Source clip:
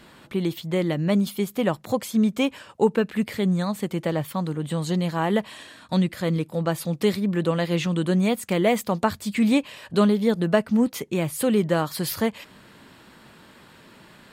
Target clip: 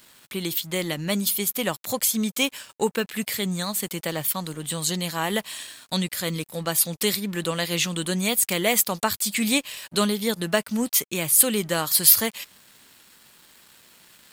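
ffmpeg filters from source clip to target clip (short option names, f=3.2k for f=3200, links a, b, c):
-af "crystalizer=i=9:c=0,aeval=exprs='sgn(val(0))*max(abs(val(0))-0.00841,0)':c=same,volume=-5.5dB"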